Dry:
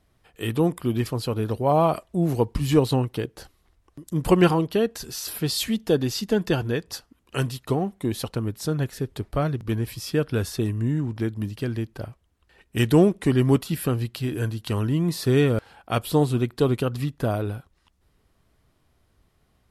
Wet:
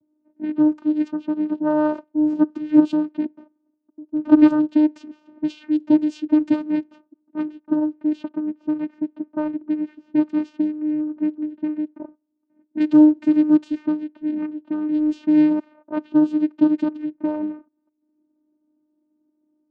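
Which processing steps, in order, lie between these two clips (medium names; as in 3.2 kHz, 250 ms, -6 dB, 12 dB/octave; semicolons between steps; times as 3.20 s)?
vocoder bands 8, saw 304 Hz; tone controls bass +13 dB, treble -2 dB; level-controlled noise filter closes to 540 Hz, open at -15 dBFS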